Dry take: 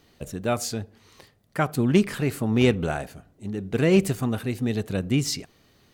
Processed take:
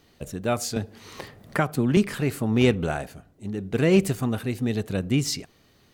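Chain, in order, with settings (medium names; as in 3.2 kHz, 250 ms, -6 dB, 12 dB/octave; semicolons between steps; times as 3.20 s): 0.76–1.97 s: three bands compressed up and down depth 70%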